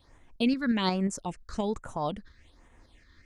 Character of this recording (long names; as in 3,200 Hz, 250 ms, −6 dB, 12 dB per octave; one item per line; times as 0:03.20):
tremolo saw up 5.6 Hz, depth 40%
phaser sweep stages 6, 1.2 Hz, lowest notch 710–4,400 Hz